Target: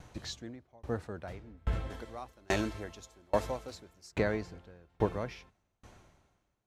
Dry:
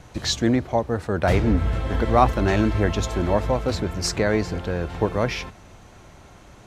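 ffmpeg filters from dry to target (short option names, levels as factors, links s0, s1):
-filter_complex "[0:a]asettb=1/sr,asplit=3[s0][s1][s2];[s0]atrim=end=1.904[s3];[s1]atrim=start=1.9:end=4.12,asetpts=PTS-STARTPTS,afade=t=in:d=0.004:c=qsin,afade=t=out:st=2.216:d=0.004:c=qsin,bass=f=250:g=-6,treble=f=4000:g=10[s4];[s2]atrim=start=4.116[s5];[s3][s4]acrossfade=d=0.004:c1=hsin:c2=qsin[s6];[s6][s5]acrossfade=d=0.004:c1=qsin:c2=hsin,aeval=exprs='val(0)*pow(10,-34*if(lt(mod(1.2*n/s,1),2*abs(1.2)/1000),1-mod(1.2*n/s,1)/(2*abs(1.2)/1000),(mod(1.2*n/s,1)-2*abs(1.2)/1000)/(1-2*abs(1.2)/1000))/20)':c=same,volume=0.531"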